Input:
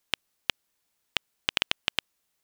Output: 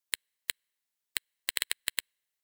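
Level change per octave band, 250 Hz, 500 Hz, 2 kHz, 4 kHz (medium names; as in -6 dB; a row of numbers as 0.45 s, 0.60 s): -14.5 dB, -11.0 dB, -4.5 dB, -6.5 dB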